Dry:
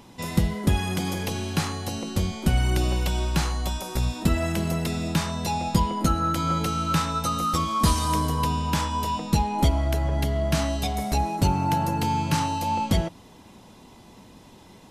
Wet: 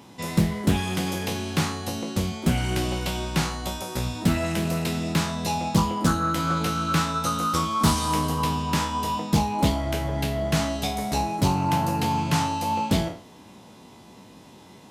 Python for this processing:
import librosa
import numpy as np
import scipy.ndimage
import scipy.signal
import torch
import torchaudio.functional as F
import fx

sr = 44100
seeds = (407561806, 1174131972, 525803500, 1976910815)

y = fx.spec_trails(x, sr, decay_s=0.42)
y = scipy.signal.sosfilt(scipy.signal.butter(2, 94.0, 'highpass', fs=sr, output='sos'), y)
y = fx.doppler_dist(y, sr, depth_ms=0.39)